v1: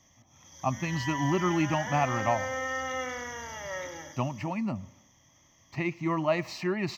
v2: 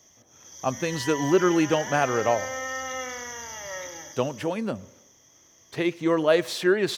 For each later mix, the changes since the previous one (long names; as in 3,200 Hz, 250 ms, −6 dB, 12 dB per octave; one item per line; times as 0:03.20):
speech: remove phaser with its sweep stopped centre 2,300 Hz, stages 8
master: add bass and treble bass −4 dB, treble +9 dB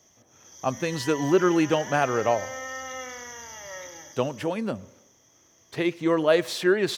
background −3.5 dB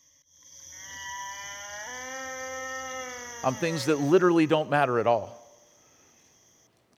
speech: entry +2.80 s